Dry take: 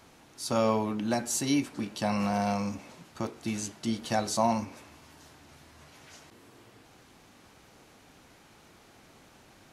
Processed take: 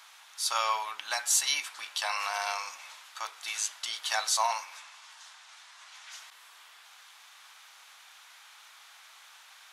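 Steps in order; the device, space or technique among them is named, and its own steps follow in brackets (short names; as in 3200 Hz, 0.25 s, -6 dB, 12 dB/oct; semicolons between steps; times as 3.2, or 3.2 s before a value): headphones lying on a table (HPF 1000 Hz 24 dB/oct; bell 3500 Hz +5 dB 0.29 oct); 4.77–6.12 Chebyshev band-pass 650–8000 Hz, order 2; gain +6 dB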